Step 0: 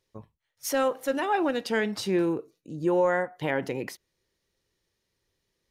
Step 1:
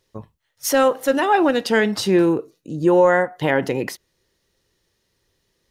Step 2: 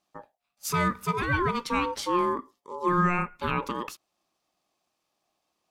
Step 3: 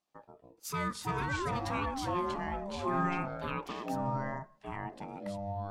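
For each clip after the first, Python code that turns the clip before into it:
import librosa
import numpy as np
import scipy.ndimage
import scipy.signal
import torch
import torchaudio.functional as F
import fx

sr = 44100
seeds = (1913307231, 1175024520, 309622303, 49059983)

y1 = fx.notch(x, sr, hz=2300.0, q=16.0)
y1 = y1 * librosa.db_to_amplitude(9.0)
y2 = y1 * np.sin(2.0 * np.pi * 710.0 * np.arange(len(y1)) / sr)
y2 = y2 * librosa.db_to_amplitude(-6.5)
y3 = fx.echo_pitch(y2, sr, ms=81, semitones=-5, count=2, db_per_echo=-3.0)
y3 = y3 * librosa.db_to_amplitude(-9.0)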